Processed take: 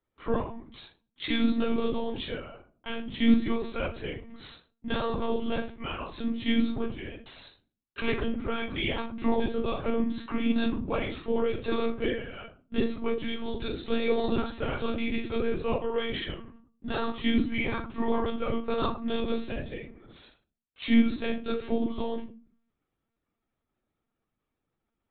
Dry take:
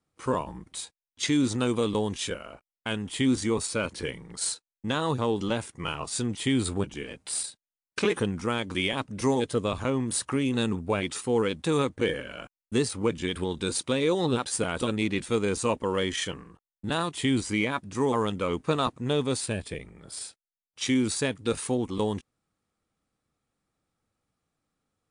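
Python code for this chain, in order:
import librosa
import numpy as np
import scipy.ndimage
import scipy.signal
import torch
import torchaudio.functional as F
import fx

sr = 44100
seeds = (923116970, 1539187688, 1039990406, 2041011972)

y = scipy.signal.sosfilt(scipy.signal.butter(2, 130.0, 'highpass', fs=sr, output='sos'), x)
y = fx.room_shoebox(y, sr, seeds[0], volume_m3=240.0, walls='furnished', distance_m=2.2)
y = fx.lpc_monotone(y, sr, seeds[1], pitch_hz=230.0, order=16)
y = y * librosa.db_to_amplitude(-6.0)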